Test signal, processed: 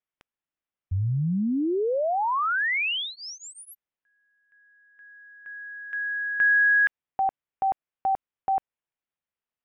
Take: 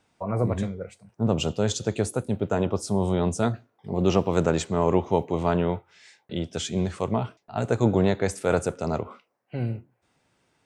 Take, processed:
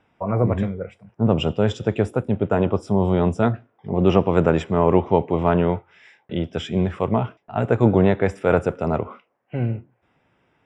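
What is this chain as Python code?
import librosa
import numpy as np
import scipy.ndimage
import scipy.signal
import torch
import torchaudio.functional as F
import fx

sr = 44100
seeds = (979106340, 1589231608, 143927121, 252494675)

y = scipy.signal.savgol_filter(x, 25, 4, mode='constant')
y = F.gain(torch.from_numpy(y), 5.0).numpy()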